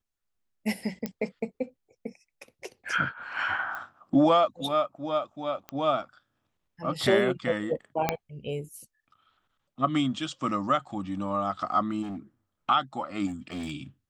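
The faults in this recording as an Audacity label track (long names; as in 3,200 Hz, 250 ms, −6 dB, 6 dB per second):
1.060000	1.060000	click −17 dBFS
3.750000	3.750000	click −24 dBFS
5.690000	5.690000	click −21 dBFS
8.090000	8.090000	click −9 dBFS
12.020000	12.180000	clipping −32.5 dBFS
13.260000	13.720000	clipping −30.5 dBFS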